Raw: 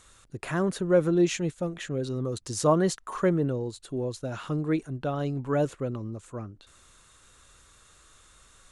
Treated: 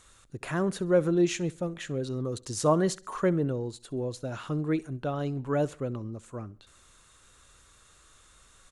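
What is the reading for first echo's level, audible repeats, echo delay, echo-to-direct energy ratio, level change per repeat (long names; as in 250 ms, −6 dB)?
−23.0 dB, 2, 66 ms, −22.0 dB, −7.0 dB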